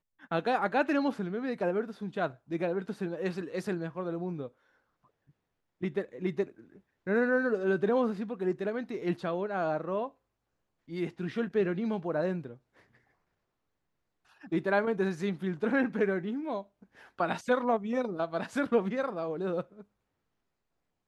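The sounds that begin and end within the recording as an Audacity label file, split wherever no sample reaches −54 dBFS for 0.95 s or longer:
14.260000	19.830000	sound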